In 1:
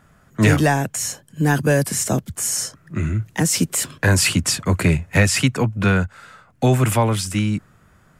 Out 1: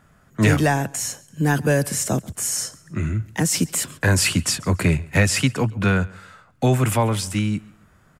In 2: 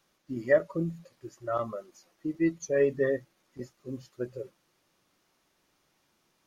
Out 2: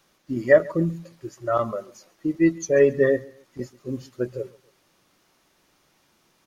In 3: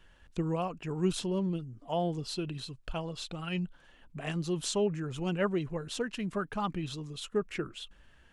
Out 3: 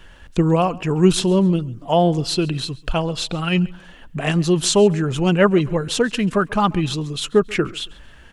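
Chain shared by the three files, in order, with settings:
repeating echo 137 ms, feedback 33%, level −23 dB
normalise the peak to −3 dBFS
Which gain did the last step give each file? −2.0, +7.5, +15.0 decibels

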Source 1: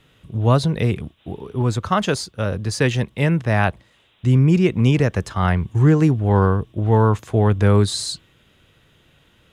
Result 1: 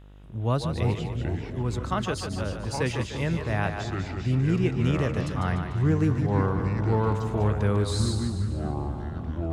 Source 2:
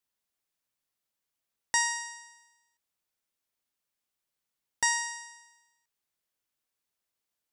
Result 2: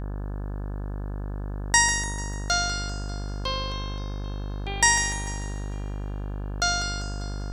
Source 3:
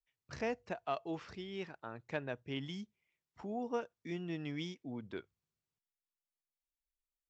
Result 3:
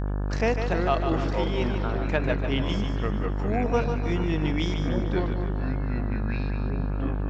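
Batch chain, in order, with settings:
echo with a time of its own for lows and highs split 320 Hz, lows 339 ms, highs 148 ms, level −7 dB
delay with pitch and tempo change per echo 176 ms, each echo −5 semitones, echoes 3, each echo −6 dB
hum with harmonics 50 Hz, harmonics 35, −39 dBFS −7 dB per octave
loudness normalisation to −27 LKFS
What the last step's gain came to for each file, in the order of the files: −9.5, +7.5, +12.0 decibels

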